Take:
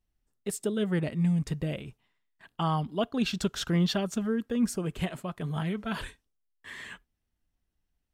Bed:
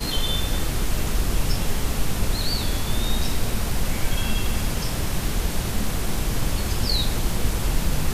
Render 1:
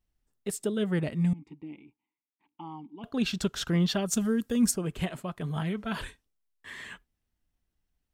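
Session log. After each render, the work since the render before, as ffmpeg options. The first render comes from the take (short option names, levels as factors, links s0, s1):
-filter_complex "[0:a]asettb=1/sr,asplit=3[s0][s1][s2];[s0]atrim=end=1.334[s3];[s1]atrim=start=1.33:end=3.04,asetpts=PTS-STARTPTS,afade=t=in:d=0.004:c=qsin,afade=t=out:st=1.706:d=0.004:c=qsin,asplit=3[s4][s5][s6];[s4]bandpass=f=300:t=q:w=8,volume=1[s7];[s5]bandpass=f=870:t=q:w=8,volume=0.501[s8];[s6]bandpass=f=2240:t=q:w=8,volume=0.355[s9];[s7][s8][s9]amix=inputs=3:normalize=0[s10];[s2]atrim=start=3.036[s11];[s3][s10]acrossfade=d=0.004:c1=hsin:c2=qsin[s12];[s12][s11]acrossfade=d=0.004:c1=qsin:c2=hsin,asplit=3[s13][s14][s15];[s13]afade=t=out:st=4.07:d=0.02[s16];[s14]bass=f=250:g=4,treble=f=4000:g=13,afade=t=in:st=4.07:d=0.02,afade=t=out:st=4.7:d=0.02[s17];[s15]afade=t=in:st=4.7:d=0.02[s18];[s16][s17][s18]amix=inputs=3:normalize=0"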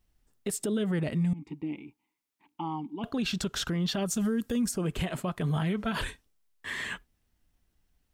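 -filter_complex "[0:a]asplit=2[s0][s1];[s1]acompressor=threshold=0.02:ratio=6,volume=1.41[s2];[s0][s2]amix=inputs=2:normalize=0,alimiter=limit=0.0794:level=0:latency=1:release=53"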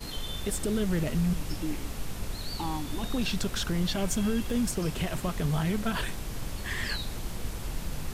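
-filter_complex "[1:a]volume=0.251[s0];[0:a][s0]amix=inputs=2:normalize=0"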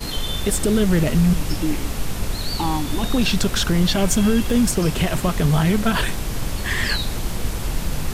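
-af "volume=3.35"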